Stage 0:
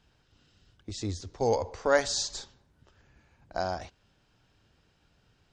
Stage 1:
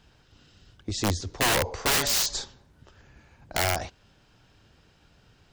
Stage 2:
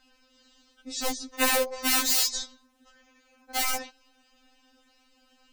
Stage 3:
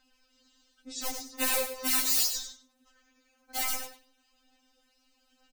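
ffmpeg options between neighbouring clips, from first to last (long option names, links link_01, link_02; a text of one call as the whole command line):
ffmpeg -i in.wav -af "aeval=exprs='(mod(17.8*val(0)+1,2)-1)/17.8':channel_layout=same,volume=7.5dB" out.wav
ffmpeg -i in.wav -af "highshelf=frequency=6300:gain=6,bandreject=frequency=3300:width=29,afftfilt=real='re*3.46*eq(mod(b,12),0)':imag='im*3.46*eq(mod(b,12),0)':win_size=2048:overlap=0.75" out.wav
ffmpeg -i in.wav -af "highshelf=frequency=6100:gain=7.5,aecho=1:1:97|194|291:0.422|0.0675|0.0108,aphaser=in_gain=1:out_gain=1:delay=3.7:decay=0.34:speed=1.1:type=sinusoidal,volume=-8.5dB" out.wav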